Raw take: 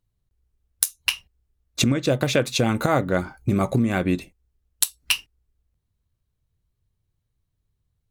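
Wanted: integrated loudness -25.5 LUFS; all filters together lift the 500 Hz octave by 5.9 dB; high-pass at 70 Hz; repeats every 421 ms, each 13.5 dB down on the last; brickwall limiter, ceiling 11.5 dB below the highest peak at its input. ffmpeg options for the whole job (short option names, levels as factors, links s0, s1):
-af "highpass=70,equalizer=f=500:t=o:g=7,alimiter=limit=0.224:level=0:latency=1,aecho=1:1:421|842:0.211|0.0444,volume=1.06"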